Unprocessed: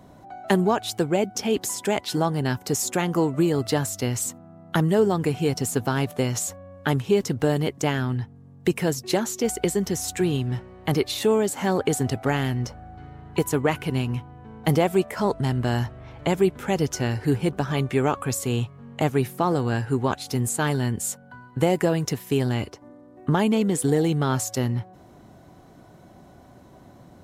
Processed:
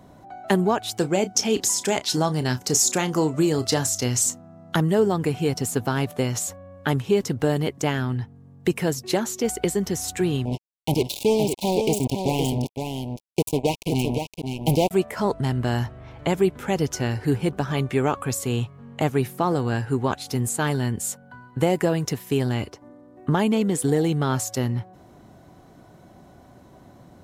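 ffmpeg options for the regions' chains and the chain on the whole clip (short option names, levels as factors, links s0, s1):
-filter_complex "[0:a]asettb=1/sr,asplit=3[s0][s1][s2];[s0]atrim=end=0.974[s3];[s1]atrim=start=0.97:end=4.76,asetpts=PTS-STARTPTS,afade=t=in:d=0.004:c=qsin,afade=t=out:st=3.786:d=0.004:c=qsin,equalizer=f=6000:w=1.1:g=9.5,asplit=2[s4][s5];[s5]adelay=32,volume=0.224[s6];[s4][s6]amix=inputs=2:normalize=0,atrim=end_sample=167139[s7];[s2]atrim=start=4.756[s8];[s3][s7]acrossfade=d=0.004:c1=hsin:c2=qsin[s9];[s9][s8]acrossfade=d=0.004:c1=qsin:c2=hsin,asettb=1/sr,asplit=3[s10][s11][s12];[s10]atrim=end=10.454[s13];[s11]atrim=start=10.45:end=14.91,asetpts=PTS-STARTPTS,afade=t=in:d=0.004:c=qsin,afade=t=out:st=4.456:d=0.004:c=qsin,acrusher=bits=3:mix=0:aa=0.5,asuperstop=centerf=1500:order=12:qfactor=1.1,aecho=1:1:516:0.501,atrim=end_sample=196686[s14];[s12]atrim=start=14.906[s15];[s13][s14]acrossfade=d=0.004:c1=hsin:c2=qsin[s16];[s16][s15]acrossfade=d=0.004:c1=qsin:c2=hsin"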